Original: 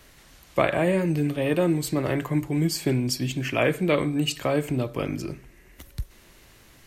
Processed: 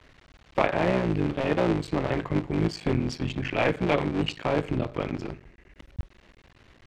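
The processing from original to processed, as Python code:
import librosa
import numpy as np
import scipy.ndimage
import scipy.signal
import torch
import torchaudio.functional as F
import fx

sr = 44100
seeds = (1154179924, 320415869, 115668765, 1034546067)

y = fx.cycle_switch(x, sr, every=3, mode='muted')
y = scipy.signal.sosfilt(scipy.signal.butter(2, 3500.0, 'lowpass', fs=sr, output='sos'), y)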